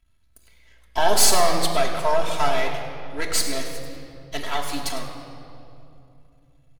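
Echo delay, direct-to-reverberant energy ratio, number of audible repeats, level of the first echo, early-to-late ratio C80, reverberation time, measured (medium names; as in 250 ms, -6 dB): 104 ms, -1.0 dB, 1, -13.5 dB, 6.0 dB, 2.7 s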